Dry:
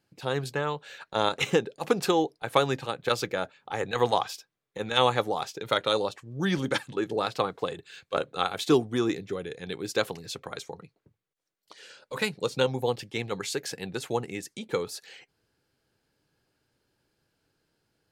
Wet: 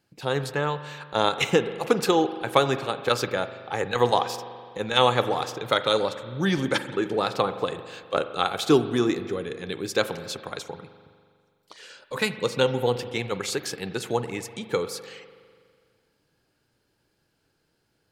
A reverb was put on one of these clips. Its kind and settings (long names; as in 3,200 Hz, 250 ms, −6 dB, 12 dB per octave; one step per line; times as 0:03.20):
spring reverb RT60 2 s, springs 41 ms, chirp 50 ms, DRR 11 dB
level +3 dB